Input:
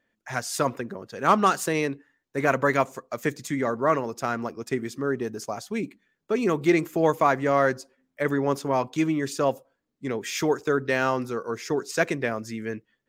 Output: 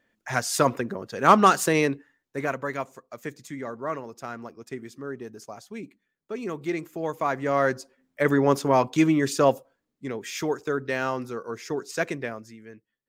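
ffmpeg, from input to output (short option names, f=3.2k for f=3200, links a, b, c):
-af "volume=16dB,afade=t=out:st=1.9:d=0.67:silence=0.251189,afade=t=in:st=7.09:d=1.3:silence=0.237137,afade=t=out:st=9.49:d=0.63:silence=0.421697,afade=t=out:st=12.16:d=0.41:silence=0.316228"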